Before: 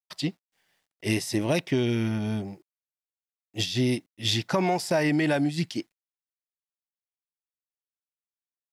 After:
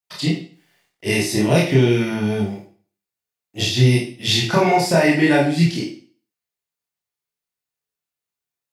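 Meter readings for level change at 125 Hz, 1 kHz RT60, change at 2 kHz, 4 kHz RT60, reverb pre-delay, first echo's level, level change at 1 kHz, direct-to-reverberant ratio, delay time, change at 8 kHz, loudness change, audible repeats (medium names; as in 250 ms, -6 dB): +11.0 dB, 0.45 s, +10.0 dB, 0.45 s, 23 ms, no echo, +10.0 dB, -5.5 dB, no echo, +8.0 dB, +9.0 dB, no echo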